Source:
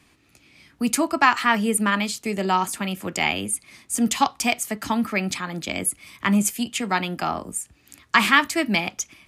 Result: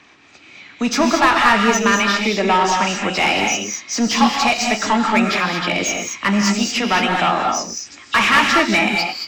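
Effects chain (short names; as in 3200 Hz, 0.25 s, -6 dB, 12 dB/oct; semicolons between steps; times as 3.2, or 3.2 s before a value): nonlinear frequency compression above 2600 Hz 1.5:1; overdrive pedal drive 23 dB, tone 2700 Hz, clips at -3 dBFS; non-linear reverb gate 0.25 s rising, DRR 2 dB; gain -3 dB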